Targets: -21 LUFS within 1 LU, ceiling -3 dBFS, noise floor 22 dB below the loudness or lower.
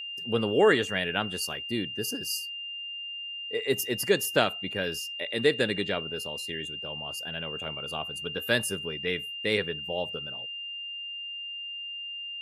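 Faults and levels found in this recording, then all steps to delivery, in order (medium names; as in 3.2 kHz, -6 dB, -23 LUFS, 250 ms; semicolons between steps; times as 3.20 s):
steady tone 2.8 kHz; tone level -35 dBFS; loudness -29.5 LUFS; peak level -9.0 dBFS; loudness target -21.0 LUFS
-> band-stop 2.8 kHz, Q 30; trim +8.5 dB; peak limiter -3 dBFS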